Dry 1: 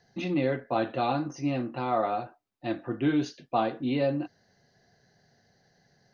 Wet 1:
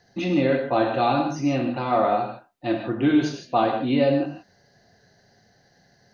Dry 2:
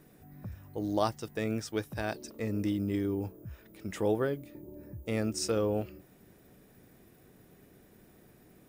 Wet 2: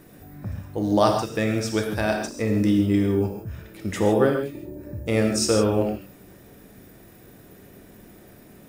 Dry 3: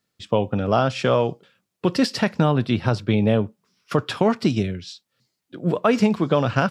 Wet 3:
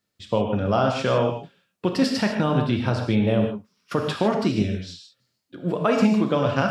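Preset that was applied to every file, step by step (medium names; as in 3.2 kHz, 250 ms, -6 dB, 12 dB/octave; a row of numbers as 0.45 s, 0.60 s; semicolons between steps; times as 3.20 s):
gated-style reverb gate 180 ms flat, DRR 2.5 dB; normalise loudness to -23 LUFS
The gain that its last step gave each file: +4.5 dB, +9.0 dB, -3.5 dB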